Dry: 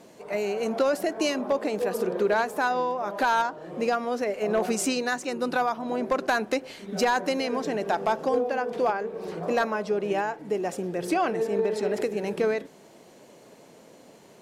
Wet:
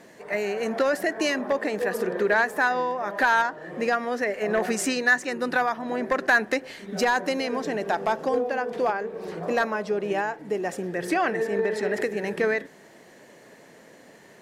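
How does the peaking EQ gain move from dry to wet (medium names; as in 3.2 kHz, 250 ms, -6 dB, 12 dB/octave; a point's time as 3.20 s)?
peaking EQ 1.8 kHz 0.37 oct
6.40 s +14 dB
7.05 s +5.5 dB
10.54 s +5.5 dB
11.01 s +14 dB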